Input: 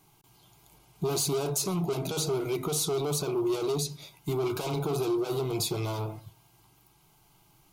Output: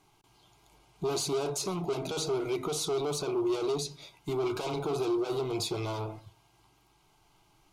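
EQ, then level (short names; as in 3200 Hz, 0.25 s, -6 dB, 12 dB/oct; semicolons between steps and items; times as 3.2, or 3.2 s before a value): air absorption 52 m; bell 150 Hz -7.5 dB 1 oct; 0.0 dB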